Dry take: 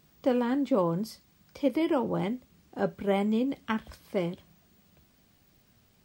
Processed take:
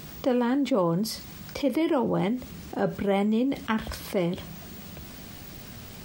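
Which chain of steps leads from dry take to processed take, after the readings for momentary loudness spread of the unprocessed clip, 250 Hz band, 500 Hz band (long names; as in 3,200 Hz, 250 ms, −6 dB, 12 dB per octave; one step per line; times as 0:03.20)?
10 LU, +3.0 dB, +2.0 dB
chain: envelope flattener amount 50%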